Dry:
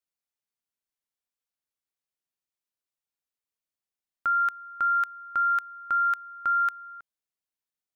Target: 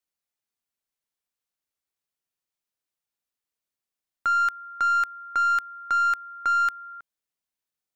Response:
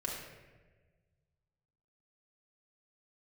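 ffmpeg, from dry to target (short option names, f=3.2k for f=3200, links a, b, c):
-filter_complex "[0:a]asettb=1/sr,asplit=3[a][b][c];[a]atrim=end=4.644[d];[b]atrim=start=4.64:end=6.93,asetpts=PTS-STARTPTS,afade=t=in:d=0.004:c=qsin,afade=t=out:st=2.286:d=0.004:c=qsin,highpass=f=220:w=0.5412,highpass=f=220:w=1.3066[e];[c]atrim=start=6.926[f];[d][e]acrossfade=d=0.004:c1=hsin:c2=qsin[g];[g][f]acrossfade=d=0.004:c1=qsin:c2=hsin,aeval=exprs='0.112*(cos(1*acos(clip(val(0)/0.112,-1,1)))-cos(1*PI/2))+0.0126*(cos(3*acos(clip(val(0)/0.112,-1,1)))-cos(3*PI/2))+0.00398*(cos(4*acos(clip(val(0)/0.112,-1,1)))-cos(4*PI/2))+0.00562*(cos(5*acos(clip(val(0)/0.112,-1,1)))-cos(5*PI/2))+0.00126*(cos(6*acos(clip(val(0)/0.112,-1,1)))-cos(6*PI/2))':c=same,volume=3dB"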